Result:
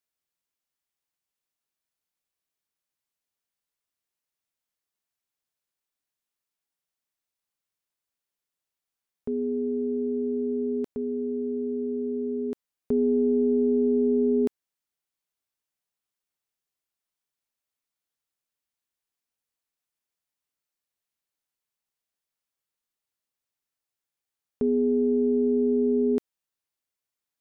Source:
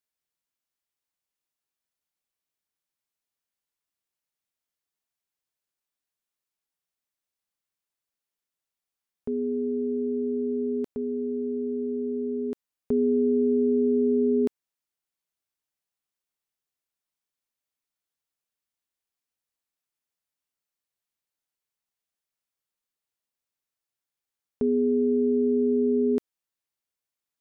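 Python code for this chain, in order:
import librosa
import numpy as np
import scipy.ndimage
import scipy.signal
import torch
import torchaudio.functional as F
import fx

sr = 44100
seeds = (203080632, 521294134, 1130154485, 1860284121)

y = fx.tracing_dist(x, sr, depth_ms=0.062)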